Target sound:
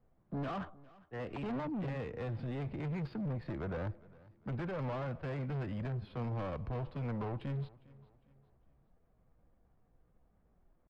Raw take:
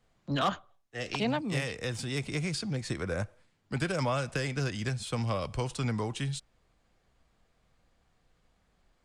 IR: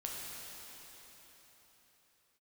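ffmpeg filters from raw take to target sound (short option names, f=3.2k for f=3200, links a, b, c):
-af "aresample=11025,asoftclip=type=hard:threshold=-35.5dB,aresample=44100,atempo=0.83,adynamicsmooth=sensitivity=2:basefreq=1k,aecho=1:1:406|812|1218:0.0794|0.031|0.0121,volume=1dB"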